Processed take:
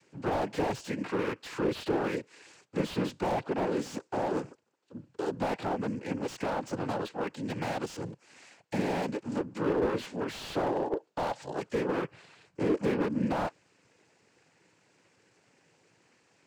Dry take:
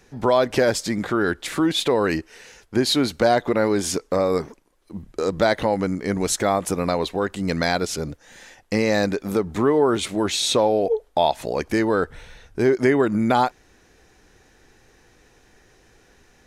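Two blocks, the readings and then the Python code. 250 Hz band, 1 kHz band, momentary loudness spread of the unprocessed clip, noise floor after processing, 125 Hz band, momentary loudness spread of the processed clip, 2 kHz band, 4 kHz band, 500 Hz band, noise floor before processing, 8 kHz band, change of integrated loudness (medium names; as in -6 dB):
-9.5 dB, -10.0 dB, 8 LU, -69 dBFS, -9.0 dB, 8 LU, -12.0 dB, -17.0 dB, -11.5 dB, -57 dBFS, -19.5 dB, -11.0 dB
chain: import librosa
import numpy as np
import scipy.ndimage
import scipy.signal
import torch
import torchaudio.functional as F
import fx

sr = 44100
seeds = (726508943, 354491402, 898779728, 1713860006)

y = fx.noise_vocoder(x, sr, seeds[0], bands=8)
y = fx.slew_limit(y, sr, full_power_hz=88.0)
y = y * librosa.db_to_amplitude(-9.0)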